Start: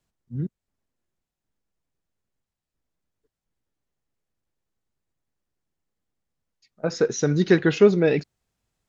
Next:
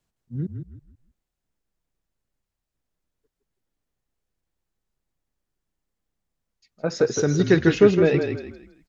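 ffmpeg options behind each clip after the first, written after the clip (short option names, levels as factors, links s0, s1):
-filter_complex "[0:a]asplit=5[s0][s1][s2][s3][s4];[s1]adelay=162,afreqshift=-32,volume=0.473[s5];[s2]adelay=324,afreqshift=-64,volume=0.157[s6];[s3]adelay=486,afreqshift=-96,volume=0.0513[s7];[s4]adelay=648,afreqshift=-128,volume=0.017[s8];[s0][s5][s6][s7][s8]amix=inputs=5:normalize=0"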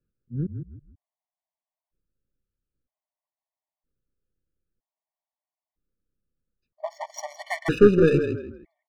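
-af "adynamicsmooth=sensitivity=4:basefreq=1400,aeval=exprs='0.708*(cos(1*acos(clip(val(0)/0.708,-1,1)))-cos(1*PI/2))+0.0708*(cos(4*acos(clip(val(0)/0.708,-1,1)))-cos(4*PI/2))':c=same,afftfilt=real='re*gt(sin(2*PI*0.52*pts/sr)*(1-2*mod(floor(b*sr/1024/590),2)),0)':imag='im*gt(sin(2*PI*0.52*pts/sr)*(1-2*mod(floor(b*sr/1024/590),2)),0)':win_size=1024:overlap=0.75"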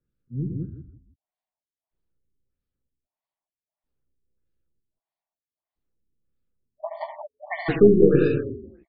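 -filter_complex "[0:a]asplit=2[s0][s1];[s1]adelay=15,volume=0.2[s2];[s0][s2]amix=inputs=2:normalize=0,aecho=1:1:72.89|110.8|186.6:0.501|0.316|0.562,afftfilt=real='re*lt(b*sr/1024,430*pow(5200/430,0.5+0.5*sin(2*PI*1.6*pts/sr)))':imag='im*lt(b*sr/1024,430*pow(5200/430,0.5+0.5*sin(2*PI*1.6*pts/sr)))':win_size=1024:overlap=0.75,volume=0.891"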